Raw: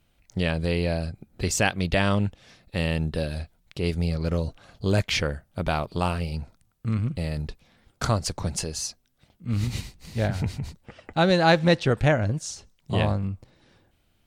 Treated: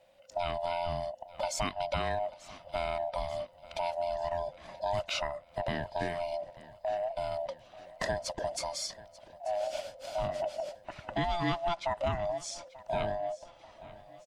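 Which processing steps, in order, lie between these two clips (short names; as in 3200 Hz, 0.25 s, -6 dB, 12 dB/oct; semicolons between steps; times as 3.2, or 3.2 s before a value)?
band-swap scrambler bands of 500 Hz; high shelf 8800 Hz -10 dB; compressor 2.5:1, threshold -37 dBFS, peak gain reduction 15 dB; feedback echo 0.888 s, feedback 53%, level -19 dB; gain +2 dB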